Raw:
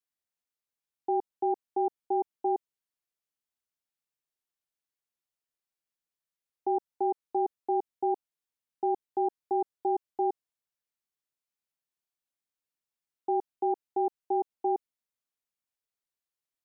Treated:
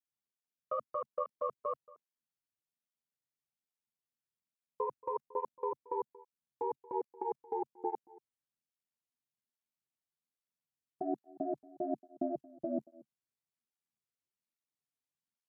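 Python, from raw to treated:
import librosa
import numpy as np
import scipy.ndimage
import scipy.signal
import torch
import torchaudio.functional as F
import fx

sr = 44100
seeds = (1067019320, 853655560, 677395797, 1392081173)

p1 = fx.speed_glide(x, sr, from_pct=153, to_pct=62)
p2 = fx.peak_eq(p1, sr, hz=180.0, db=14.5, octaves=0.73)
p3 = fx.level_steps(p2, sr, step_db=22)
p4 = p3 * np.sin(2.0 * np.pi * 42.0 * np.arange(len(p3)) / sr)
p5 = 10.0 ** (-29.0 / 20.0) * np.tanh(p4 / 10.0 ** (-29.0 / 20.0))
p6 = p5 + fx.echo_single(p5, sr, ms=229, db=-21.5, dry=0)
p7 = fx.flanger_cancel(p6, sr, hz=1.2, depth_ms=6.0)
y = p7 * 10.0 ** (16.0 / 20.0)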